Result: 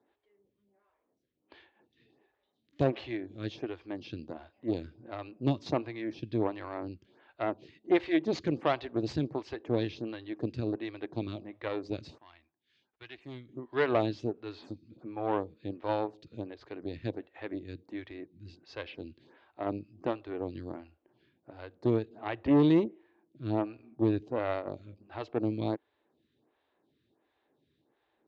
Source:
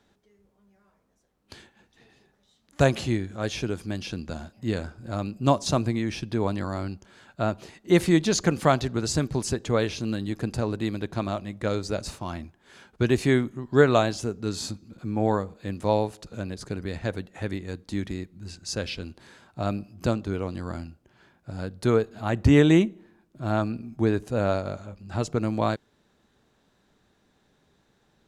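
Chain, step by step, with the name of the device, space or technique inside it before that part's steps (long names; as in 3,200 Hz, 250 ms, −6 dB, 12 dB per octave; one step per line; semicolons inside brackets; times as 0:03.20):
vibe pedal into a guitar amplifier (phaser with staggered stages 1.4 Hz; tube saturation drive 19 dB, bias 0.8; loudspeaker in its box 98–3,900 Hz, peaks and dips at 190 Hz −10 dB, 320 Hz +6 dB, 1,400 Hz −6 dB)
0:12.18–0:13.49: guitar amp tone stack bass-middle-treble 5-5-5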